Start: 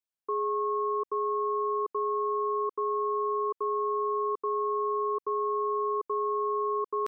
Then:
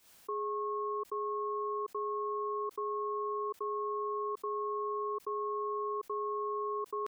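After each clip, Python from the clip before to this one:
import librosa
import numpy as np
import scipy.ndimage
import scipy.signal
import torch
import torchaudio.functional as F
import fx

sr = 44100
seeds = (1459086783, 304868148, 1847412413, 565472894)

y = fx.pre_swell(x, sr, db_per_s=110.0)
y = y * librosa.db_to_amplitude(-6.5)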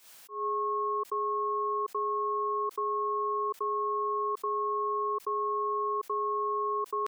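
y = fx.low_shelf(x, sr, hz=360.0, db=-11.0)
y = fx.auto_swell(y, sr, attack_ms=174.0)
y = y * librosa.db_to_amplitude(7.5)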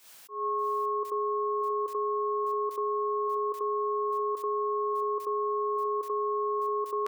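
y = x + 10.0 ** (-8.5 / 20.0) * np.pad(x, (int(585 * sr / 1000.0), 0))[:len(x)]
y = y * librosa.db_to_amplitude(1.0)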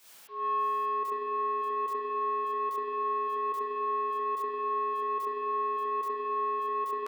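y = 10.0 ** (-26.0 / 20.0) * np.tanh(x / 10.0 ** (-26.0 / 20.0))
y = fx.rev_spring(y, sr, rt60_s=2.2, pass_ms=(49,), chirp_ms=25, drr_db=1.0)
y = y * librosa.db_to_amplitude(-1.5)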